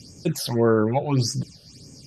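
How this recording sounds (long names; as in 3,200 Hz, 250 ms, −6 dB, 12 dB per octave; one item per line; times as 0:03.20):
phaser sweep stages 8, 1.7 Hz, lowest notch 280–4,000 Hz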